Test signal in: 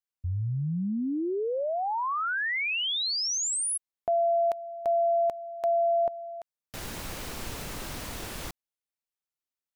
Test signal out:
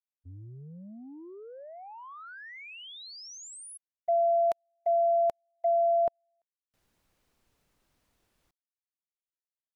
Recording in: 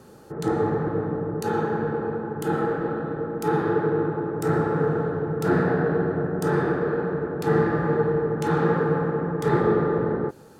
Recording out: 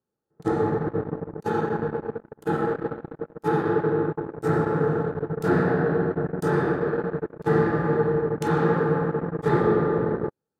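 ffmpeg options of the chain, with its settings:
ffmpeg -i in.wav -af "agate=range=-37dB:threshold=-29dB:ratio=16:release=38:detection=peak" out.wav

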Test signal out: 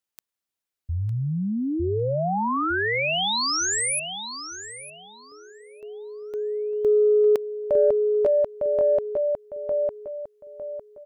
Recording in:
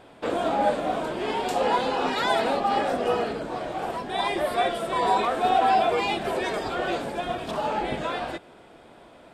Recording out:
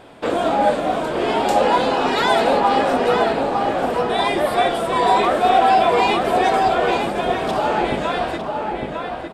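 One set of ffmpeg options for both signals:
ffmpeg -i in.wav -filter_complex "[0:a]asplit=2[link_01][link_02];[link_02]adelay=905,lowpass=frequency=2200:poles=1,volume=-3.5dB,asplit=2[link_03][link_04];[link_04]adelay=905,lowpass=frequency=2200:poles=1,volume=0.33,asplit=2[link_05][link_06];[link_06]adelay=905,lowpass=frequency=2200:poles=1,volume=0.33,asplit=2[link_07][link_08];[link_08]adelay=905,lowpass=frequency=2200:poles=1,volume=0.33[link_09];[link_01][link_03][link_05][link_07][link_09]amix=inputs=5:normalize=0,acontrast=62" out.wav

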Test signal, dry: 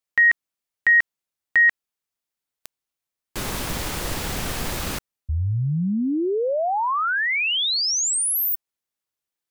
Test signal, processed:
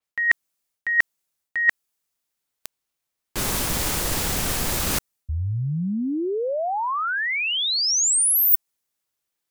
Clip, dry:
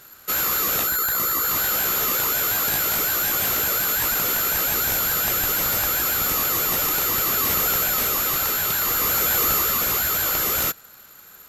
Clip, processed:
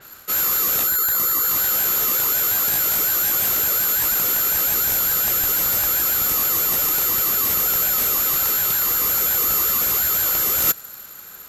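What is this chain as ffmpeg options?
ffmpeg -i in.wav -af "areverse,acompressor=threshold=-30dB:ratio=6:attack=98:release=258:knee=6:detection=peak,areverse,adynamicequalizer=threshold=0.00447:dfrequency=5000:dqfactor=0.7:tfrequency=5000:tqfactor=0.7:attack=5:release=100:ratio=0.375:range=3:mode=boostabove:tftype=highshelf,volume=4.5dB" out.wav

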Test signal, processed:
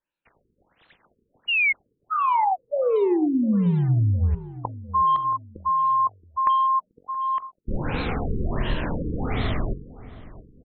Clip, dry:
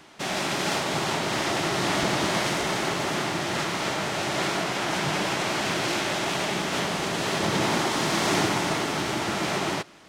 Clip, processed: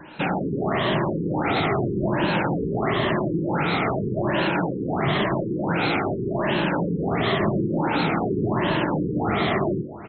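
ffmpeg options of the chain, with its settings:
ffmpeg -i in.wav -filter_complex "[0:a]afftfilt=real='re*pow(10,9/40*sin(2*PI*(1.3*log(max(b,1)*sr/1024/100)/log(2)-(-0.91)*(pts-256)/sr)))':imag='im*pow(10,9/40*sin(2*PI*(1.3*log(max(b,1)*sr/1024/100)/log(2)-(-0.91)*(pts-256)/sr)))':win_size=1024:overlap=0.75,lowshelf=frequency=370:gain=6,asplit=2[link_01][link_02];[link_02]acrusher=bits=3:mode=log:mix=0:aa=0.000001,volume=-9dB[link_03];[link_01][link_03]amix=inputs=2:normalize=0,acontrast=44,bandreject=frequency=46.54:width_type=h:width=4,bandreject=frequency=93.08:width_type=h:width=4,bandreject=frequency=139.62:width_type=h:width=4,bandreject=frequency=186.16:width_type=h:width=4,bandreject=frequency=232.7:width_type=h:width=4,bandreject=frequency=279.24:width_type=h:width=4,bandreject=frequency=325.78:width_type=h:width=4,bandreject=frequency=372.32:width_type=h:width=4,bandreject=frequency=418.86:width_type=h:width=4,bandreject=frequency=465.4:width_type=h:width=4,bandreject=frequency=511.94:width_type=h:width=4,bandreject=frequency=558.48:width_type=h:width=4,bandreject=frequency=605.02:width_type=h:width=4,bandreject=frequency=651.56:width_type=h:width=4,bandreject=frequency=698.1:width_type=h:width=4,bandreject=frequency=744.64:width_type=h:width=4,bandreject=frequency=791.18:width_type=h:width=4,bandreject=frequency=837.72:width_type=h:width=4,bandreject=frequency=884.26:width_type=h:width=4,bandreject=frequency=930.8:width_type=h:width=4,bandreject=frequency=977.34:width_type=h:width=4,bandreject=frequency=1023.88:width_type=h:width=4,bandreject=frequency=1070.42:width_type=h:width=4,bandreject=frequency=1116.96:width_type=h:width=4,bandreject=frequency=1163.5:width_type=h:width=4,bandreject=frequency=1210.04:width_type=h:width=4,bandreject=frequency=1256.58:width_type=h:width=4,bandreject=frequency=1303.12:width_type=h:width=4,bandreject=frequency=1349.66:width_type=h:width=4,bandreject=frequency=1396.2:width_type=h:width=4,bandreject=frequency=1442.74:width_type=h:width=4,bandreject=frequency=1489.28:width_type=h:width=4,bandreject=frequency=1535.82:width_type=h:width=4,acompressor=threshold=-16dB:ratio=8,asplit=2[link_04][link_05];[link_05]adelay=674,lowpass=frequency=1500:poles=1,volume=-17dB,asplit=2[link_06][link_07];[link_07]adelay=674,lowpass=frequency=1500:poles=1,volume=0.41,asplit=2[link_08][link_09];[link_09]adelay=674,lowpass=frequency=1500:poles=1,volume=0.41[link_10];[link_06][link_08][link_10]amix=inputs=3:normalize=0[link_11];[link_04][link_11]amix=inputs=2:normalize=0,afftfilt=real='re*lt(b*sr/1024,470*pow(4300/470,0.5+0.5*sin(2*PI*1.4*pts/sr)))':imag='im*lt(b*sr/1024,470*pow(4300/470,0.5+0.5*sin(2*PI*1.4*pts/sr)))':win_size=1024:overlap=0.75,volume=-2dB" out.wav

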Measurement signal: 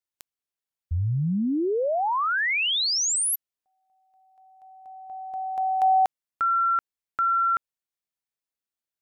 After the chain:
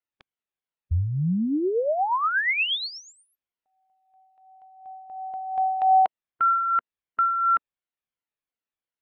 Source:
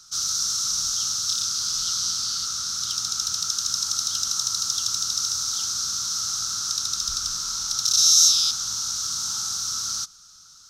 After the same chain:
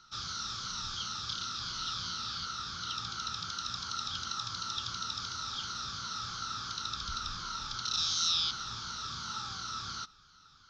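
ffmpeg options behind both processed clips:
ffmpeg -i in.wav -af "afftfilt=real='re*pow(10,7/40*sin(2*PI*(1.9*log(max(b,1)*sr/1024/100)/log(2)-(-2.8)*(pts-256)/sr)))':imag='im*pow(10,7/40*sin(2*PI*(1.9*log(max(b,1)*sr/1024/100)/log(2)-(-2.8)*(pts-256)/sr)))':win_size=1024:overlap=0.75,lowpass=frequency=3400:width=0.5412,lowpass=frequency=3400:width=1.3066" out.wav

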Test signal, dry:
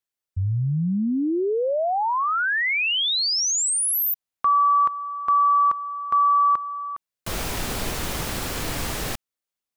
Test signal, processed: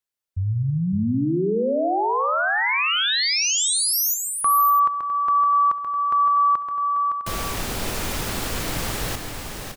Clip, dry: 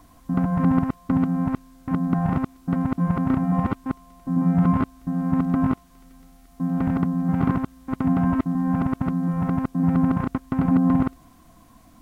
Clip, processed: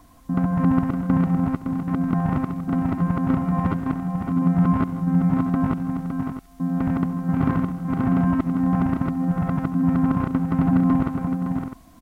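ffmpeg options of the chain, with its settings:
ffmpeg -i in.wav -af "aecho=1:1:68|140|158|272|562|656:0.141|0.119|0.158|0.106|0.473|0.266" out.wav

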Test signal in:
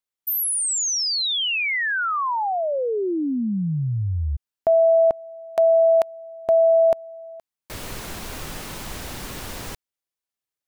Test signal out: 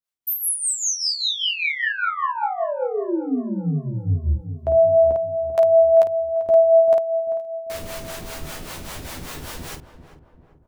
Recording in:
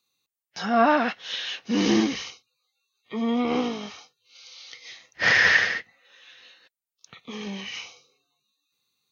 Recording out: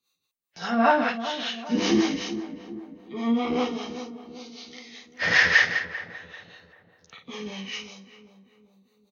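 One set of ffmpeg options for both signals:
ffmpeg -i in.wav -filter_complex "[0:a]asplit=2[link_01][link_02];[link_02]aecho=0:1:12|52:0.562|0.708[link_03];[link_01][link_03]amix=inputs=2:normalize=0,acrossover=split=450[link_04][link_05];[link_04]aeval=exprs='val(0)*(1-0.7/2+0.7/2*cos(2*PI*5.1*n/s))':channel_layout=same[link_06];[link_05]aeval=exprs='val(0)*(1-0.7/2-0.7/2*cos(2*PI*5.1*n/s))':channel_layout=same[link_07];[link_06][link_07]amix=inputs=2:normalize=0,asplit=2[link_08][link_09];[link_09]adelay=392,lowpass=frequency=1100:poles=1,volume=-10.5dB,asplit=2[link_10][link_11];[link_11]adelay=392,lowpass=frequency=1100:poles=1,volume=0.53,asplit=2[link_12][link_13];[link_13]adelay=392,lowpass=frequency=1100:poles=1,volume=0.53,asplit=2[link_14][link_15];[link_15]adelay=392,lowpass=frequency=1100:poles=1,volume=0.53,asplit=2[link_16][link_17];[link_17]adelay=392,lowpass=frequency=1100:poles=1,volume=0.53,asplit=2[link_18][link_19];[link_19]adelay=392,lowpass=frequency=1100:poles=1,volume=0.53[link_20];[link_10][link_12][link_14][link_16][link_18][link_20]amix=inputs=6:normalize=0[link_21];[link_08][link_21]amix=inputs=2:normalize=0" out.wav

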